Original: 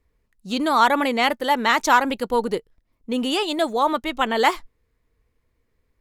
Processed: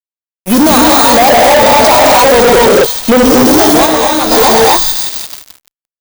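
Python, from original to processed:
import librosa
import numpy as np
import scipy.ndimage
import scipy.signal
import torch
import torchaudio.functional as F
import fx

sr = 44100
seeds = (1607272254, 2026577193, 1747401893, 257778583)

p1 = fx.bit_reversed(x, sr, seeds[0], block=16)
p2 = fx.recorder_agc(p1, sr, target_db=-8.5, rise_db_per_s=5.4, max_gain_db=30)
p3 = fx.peak_eq(p2, sr, hz=640.0, db=14.5, octaves=0.82, at=(1.13, 3.17))
p4 = fx.env_phaser(p3, sr, low_hz=490.0, high_hz=2400.0, full_db=-18.5)
p5 = fx.low_shelf(p4, sr, hz=180.0, db=-6.5)
p6 = p5 + fx.echo_wet_highpass(p5, sr, ms=172, feedback_pct=71, hz=3200.0, wet_db=-11.0, dry=0)
p7 = fx.rev_gated(p6, sr, seeds[1], gate_ms=280, shape='rising', drr_db=-3.0)
p8 = fx.fuzz(p7, sr, gain_db=35.0, gate_db=-35.0)
p9 = fx.detune_double(p8, sr, cents=fx.line((3.85, 19.0), (4.3, 35.0)), at=(3.85, 4.3), fade=0.02)
y = F.gain(torch.from_numpy(p9), 9.0).numpy()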